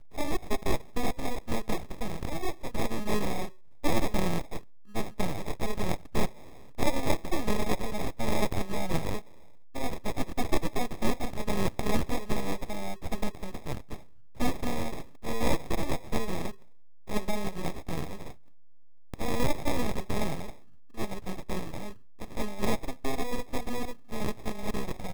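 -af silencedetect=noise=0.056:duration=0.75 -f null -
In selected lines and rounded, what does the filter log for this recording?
silence_start: 18.13
silence_end: 19.14 | silence_duration: 1.01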